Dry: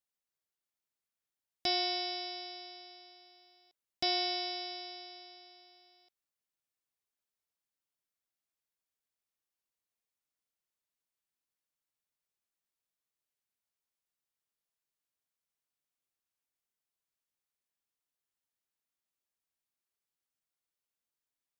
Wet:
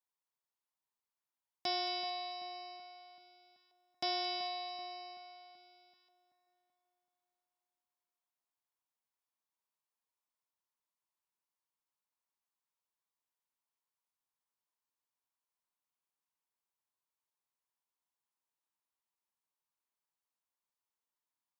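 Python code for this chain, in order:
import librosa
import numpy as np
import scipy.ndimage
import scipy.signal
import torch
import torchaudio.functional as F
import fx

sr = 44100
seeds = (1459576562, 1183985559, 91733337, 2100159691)

y = scipy.signal.sosfilt(scipy.signal.butter(2, 120.0, 'highpass', fs=sr, output='sos'), x)
y = fx.peak_eq(y, sr, hz=970.0, db=12.5, octaves=0.61)
y = fx.echo_split(y, sr, split_hz=2000.0, low_ms=382, high_ms=222, feedback_pct=52, wet_db=-11.5)
y = y * 10.0 ** (-6.0 / 20.0)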